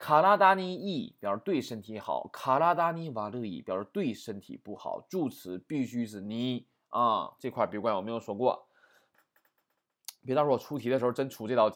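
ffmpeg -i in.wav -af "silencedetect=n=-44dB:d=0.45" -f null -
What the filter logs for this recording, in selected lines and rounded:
silence_start: 8.58
silence_end: 10.08 | silence_duration: 1.50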